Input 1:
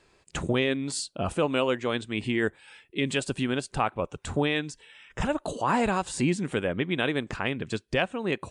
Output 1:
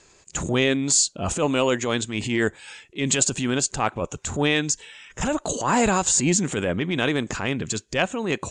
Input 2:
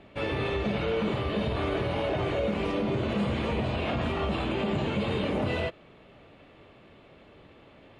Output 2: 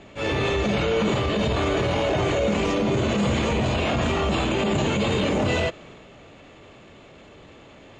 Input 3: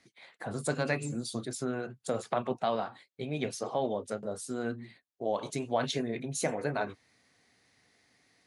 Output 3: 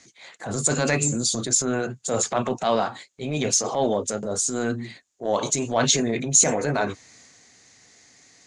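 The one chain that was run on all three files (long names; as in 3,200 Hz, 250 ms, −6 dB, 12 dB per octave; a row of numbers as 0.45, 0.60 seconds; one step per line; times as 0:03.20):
transient designer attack −8 dB, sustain +3 dB
low-pass with resonance 6,900 Hz, resonance Q 6.7
loudness normalisation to −23 LKFS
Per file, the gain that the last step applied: +5.0, +6.5, +10.0 decibels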